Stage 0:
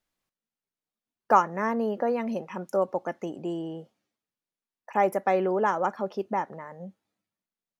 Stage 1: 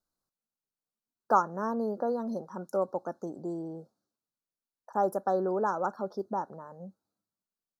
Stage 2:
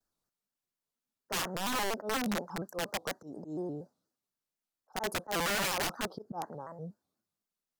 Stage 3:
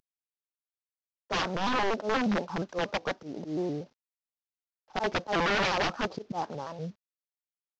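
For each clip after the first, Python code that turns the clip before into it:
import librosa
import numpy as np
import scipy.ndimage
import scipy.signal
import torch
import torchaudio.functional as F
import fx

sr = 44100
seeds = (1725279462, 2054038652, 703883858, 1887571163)

y1 = scipy.signal.sosfilt(scipy.signal.ellip(3, 1.0, 50, [1500.0, 4000.0], 'bandstop', fs=sr, output='sos'), x)
y1 = F.gain(torch.from_numpy(y1), -3.5).numpy()
y2 = fx.auto_swell(y1, sr, attack_ms=146.0)
y2 = (np.mod(10.0 ** (28.0 / 20.0) * y2 + 1.0, 2.0) - 1.0) / 10.0 ** (28.0 / 20.0)
y2 = fx.vibrato_shape(y2, sr, shape='square', rate_hz=4.2, depth_cents=160.0)
y2 = F.gain(torch.from_numpy(y2), 1.5).numpy()
y3 = fx.cvsd(y2, sr, bps=32000)
y3 = F.gain(torch.from_numpy(y3), 6.0).numpy()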